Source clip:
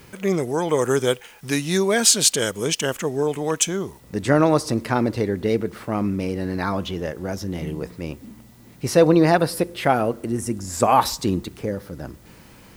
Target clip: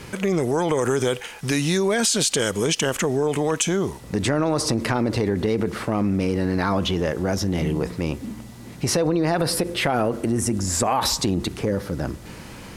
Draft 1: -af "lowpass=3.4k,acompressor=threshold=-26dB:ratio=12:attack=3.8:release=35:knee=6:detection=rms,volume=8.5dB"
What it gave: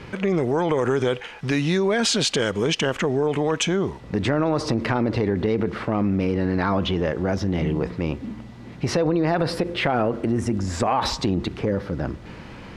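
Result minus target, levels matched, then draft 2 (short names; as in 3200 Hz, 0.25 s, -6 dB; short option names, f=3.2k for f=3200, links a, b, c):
8000 Hz band -7.5 dB
-af "lowpass=11k,acompressor=threshold=-26dB:ratio=12:attack=3.8:release=35:knee=6:detection=rms,volume=8.5dB"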